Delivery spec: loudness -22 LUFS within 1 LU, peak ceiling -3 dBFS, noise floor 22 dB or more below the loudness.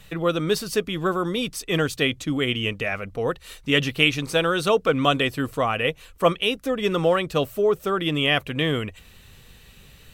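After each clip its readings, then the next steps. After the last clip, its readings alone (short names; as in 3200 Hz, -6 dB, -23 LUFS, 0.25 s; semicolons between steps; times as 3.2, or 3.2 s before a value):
loudness -23.0 LUFS; peak -2.5 dBFS; loudness target -22.0 LUFS
-> gain +1 dB; limiter -3 dBFS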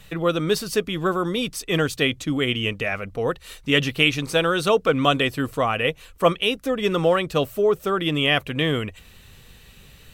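loudness -22.0 LUFS; peak -3.0 dBFS; noise floor -49 dBFS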